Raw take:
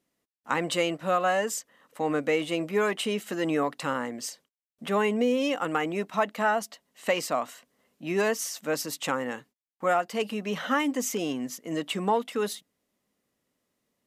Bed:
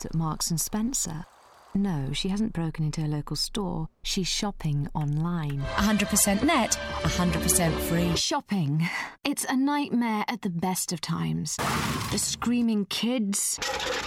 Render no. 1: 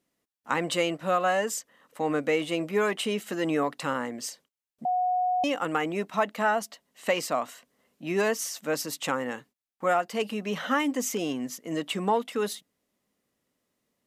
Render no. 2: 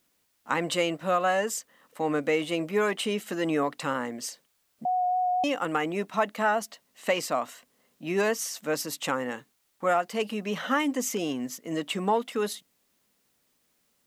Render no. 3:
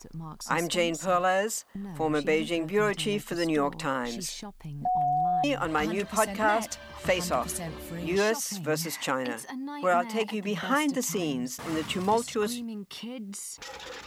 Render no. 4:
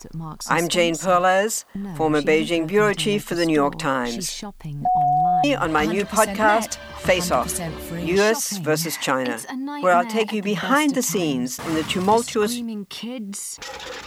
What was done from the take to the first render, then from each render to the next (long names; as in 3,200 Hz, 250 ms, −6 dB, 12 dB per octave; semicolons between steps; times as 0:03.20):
0:04.85–0:05.44: beep over 730 Hz −22.5 dBFS
pitch vibrato 4.1 Hz 16 cents; bit-depth reduction 12 bits, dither triangular
mix in bed −12 dB
level +7.5 dB